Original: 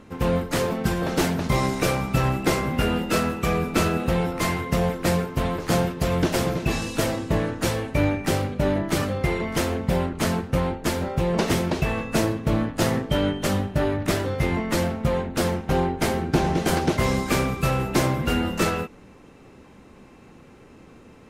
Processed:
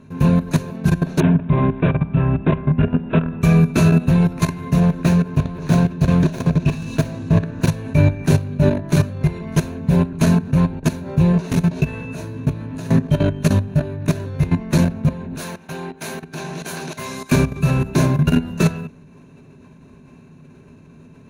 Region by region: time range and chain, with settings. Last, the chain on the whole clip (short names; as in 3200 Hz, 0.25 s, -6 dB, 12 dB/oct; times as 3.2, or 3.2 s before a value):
1.2–3.42 bell 3500 Hz -12 dB 1 oct + careless resampling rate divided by 6×, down none, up filtered
4.8–7.68 self-modulated delay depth 0.21 ms + high shelf 8700 Hz -6 dB
11.32–12.89 HPF 49 Hz + compressor 4:1, threshold -22 dBFS + doubler 16 ms -3.5 dB
15.38–17.32 HPF 1100 Hz 6 dB/oct + high shelf 9600 Hz +5.5 dB
whole clip: bell 150 Hz +13.5 dB 1.3 oct; level quantiser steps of 16 dB; ripple EQ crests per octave 1.5, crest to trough 9 dB; gain +2 dB